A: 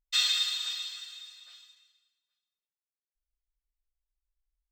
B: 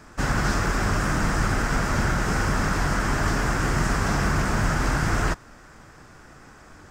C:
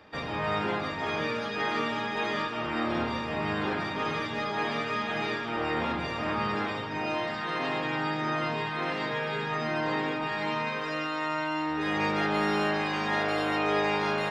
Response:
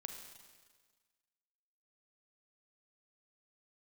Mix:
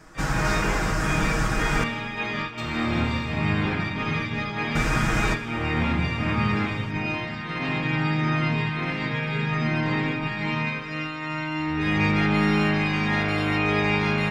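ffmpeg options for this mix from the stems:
-filter_complex "[0:a]acompressor=threshold=-32dB:ratio=6,adelay=2450,volume=-9dB[a];[1:a]aecho=1:1:6.3:0.8,volume=-6.5dB,asplit=3[b][c][d];[b]atrim=end=1.84,asetpts=PTS-STARTPTS,afade=t=out:st=1.836:d=0.004:c=hsin[e];[c]atrim=start=1.84:end=4.75,asetpts=PTS-STARTPTS,volume=0[f];[d]atrim=start=4.75,asetpts=PTS-STARTPTS,afade=t=in:d=0.004:c=hsin[g];[e][f][g]concat=n=3:v=0:a=1,asplit=2[h][i];[i]volume=-3.5dB[j];[2:a]asubboost=boost=6:cutoff=200,agate=range=-33dB:threshold=-26dB:ratio=3:detection=peak,equalizer=f=2.3k:w=3.6:g=8.5,volume=0dB,asplit=2[k][l];[l]volume=-6.5dB[m];[3:a]atrim=start_sample=2205[n];[j][m]amix=inputs=2:normalize=0[o];[o][n]afir=irnorm=-1:irlink=0[p];[a][h][k][p]amix=inputs=4:normalize=0"

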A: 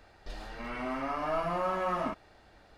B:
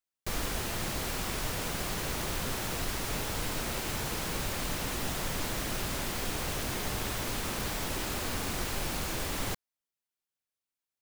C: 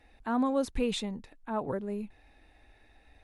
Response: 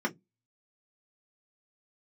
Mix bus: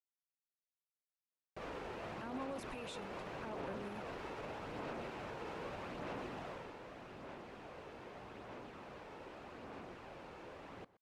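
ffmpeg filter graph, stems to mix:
-filter_complex "[1:a]bandpass=f=570:t=q:w=0.65:csg=0,adelay=1300,volume=-4.5dB,afade=t=out:st=6.36:d=0.38:silence=0.421697,asplit=2[a][b];[b]volume=-20dB[c];[2:a]aemphasis=mode=production:type=bsi,acompressor=threshold=-30dB:ratio=6,adelay=1950,volume=-8dB[d];[a][d]amix=inputs=2:normalize=0,equalizer=f=2.6k:w=4.8:g=4,alimiter=level_in=12.5dB:limit=-24dB:level=0:latency=1:release=38,volume=-12.5dB,volume=0dB[e];[c]aecho=0:1:122:1[f];[e][f]amix=inputs=2:normalize=0,highshelf=f=7.2k:g=-11.5,aphaser=in_gain=1:out_gain=1:delay=2.3:decay=0.25:speed=0.82:type=sinusoidal"

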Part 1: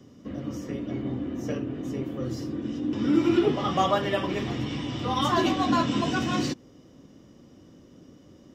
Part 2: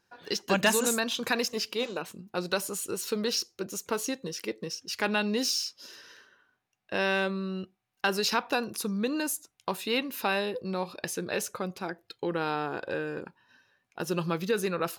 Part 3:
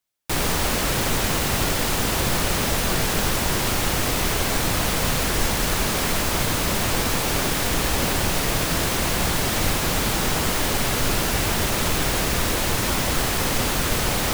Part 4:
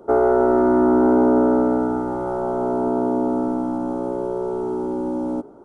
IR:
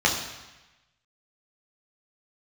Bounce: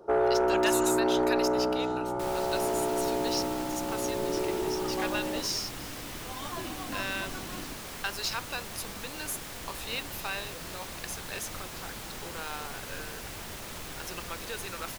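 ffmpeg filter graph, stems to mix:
-filter_complex "[0:a]adelay=1200,volume=-14.5dB[a];[1:a]highpass=f=1.4k:p=1,volume=-3dB[b];[2:a]adelay=1900,volume=-17.5dB[c];[3:a]asoftclip=type=tanh:threshold=-11.5dB,equalizer=f=250:t=o:w=0.29:g=-12,volume=-4.5dB[d];[a][b][c][d]amix=inputs=4:normalize=0,lowshelf=f=410:g=-3"

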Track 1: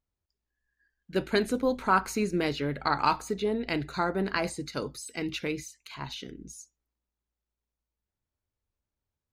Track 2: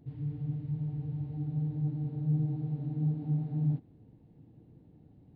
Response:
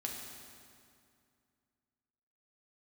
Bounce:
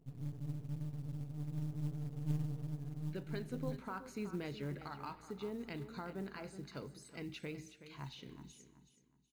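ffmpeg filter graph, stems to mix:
-filter_complex "[0:a]highshelf=f=7.4k:g=-8,alimiter=limit=-22dB:level=0:latency=1:release=452,adelay=2000,volume=-13.5dB,asplit=3[a][b][c];[b]volume=-13.5dB[d];[c]volume=-11dB[e];[1:a]aeval=exprs='max(val(0),0)':c=same,aeval=exprs='0.0891*(cos(1*acos(clip(val(0)/0.0891,-1,1)))-cos(1*PI/2))+0.0141*(cos(2*acos(clip(val(0)/0.0891,-1,1)))-cos(2*PI/2))+0.00355*(cos(3*acos(clip(val(0)/0.0891,-1,1)))-cos(3*PI/2))+0.00708*(cos(4*acos(clip(val(0)/0.0891,-1,1)))-cos(4*PI/2))+0.00355*(cos(5*acos(clip(val(0)/0.0891,-1,1)))-cos(5*PI/2))':c=same,volume=-9dB,afade=t=out:st=2.67:d=0.56:silence=0.473151,asplit=2[f][g];[g]volume=-23.5dB[h];[2:a]atrim=start_sample=2205[i];[d][h]amix=inputs=2:normalize=0[j];[j][i]afir=irnorm=-1:irlink=0[k];[e]aecho=0:1:373|746|1119|1492:1|0.28|0.0784|0.022[l];[a][f][k][l]amix=inputs=4:normalize=0,equalizer=f=140:w=1.4:g=7.5,acrusher=bits=7:mode=log:mix=0:aa=0.000001"

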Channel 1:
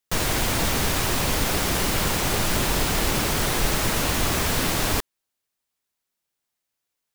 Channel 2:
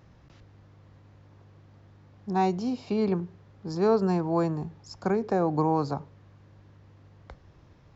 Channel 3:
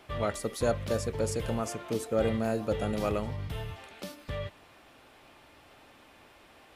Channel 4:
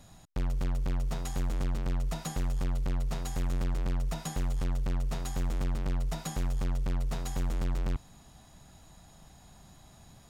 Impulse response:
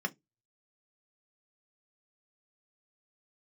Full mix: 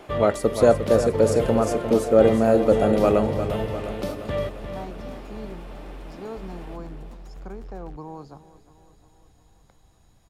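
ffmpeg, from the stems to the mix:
-filter_complex "[0:a]bandpass=f=270:t=q:w=1.7:csg=0,asplit=2[a][b];[b]afreqshift=2.9[c];[a][c]amix=inputs=2:normalize=1,adelay=2150,volume=-12.5dB[d];[1:a]adelay=2400,volume=-13.5dB,asplit=2[e][f];[f]volume=-16dB[g];[2:a]equalizer=f=430:t=o:w=3:g=10,volume=3dB,asplit=2[h][i];[i]volume=-9.5dB[j];[3:a]acrossover=split=580|2200[k][l][m];[k]acompressor=threshold=-40dB:ratio=4[n];[l]acompressor=threshold=-50dB:ratio=4[o];[m]acompressor=threshold=-58dB:ratio=4[p];[n][o][p]amix=inputs=3:normalize=0,asubboost=boost=2.5:cutoff=80,volume=-7.5dB[q];[g][j]amix=inputs=2:normalize=0,aecho=0:1:352|704|1056|1408|1760|2112|2464|2816|3168:1|0.59|0.348|0.205|0.121|0.0715|0.0422|0.0249|0.0147[r];[d][e][h][q][r]amix=inputs=5:normalize=0"

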